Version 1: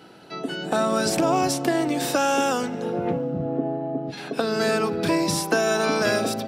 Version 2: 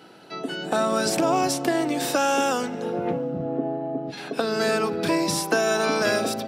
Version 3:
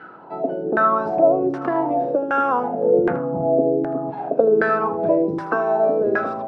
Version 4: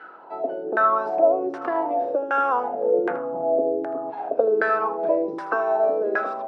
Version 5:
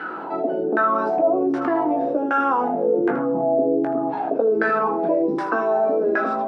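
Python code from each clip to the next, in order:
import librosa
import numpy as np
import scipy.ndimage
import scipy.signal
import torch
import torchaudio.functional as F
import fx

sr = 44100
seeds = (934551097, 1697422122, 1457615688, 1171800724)

y1 = fx.low_shelf(x, sr, hz=110.0, db=-9.5)
y2 = fx.rider(y1, sr, range_db=3, speed_s=0.5)
y2 = fx.filter_lfo_lowpass(y2, sr, shape='saw_down', hz=1.3, low_hz=370.0, high_hz=1600.0, q=5.6)
y2 = y2 + 10.0 ** (-13.5 / 20.0) * np.pad(y2, (int(79 * sr / 1000.0), 0))[:len(y2)]
y2 = y2 * librosa.db_to_amplitude(-1.0)
y3 = scipy.signal.sosfilt(scipy.signal.butter(2, 430.0, 'highpass', fs=sr, output='sos'), y2)
y3 = y3 * librosa.db_to_amplitude(-1.5)
y4 = fx.low_shelf_res(y3, sr, hz=370.0, db=7.0, q=1.5)
y4 = fx.chorus_voices(y4, sr, voices=4, hz=0.39, base_ms=18, depth_ms=4.8, mix_pct=35)
y4 = fx.env_flatten(y4, sr, amount_pct=50)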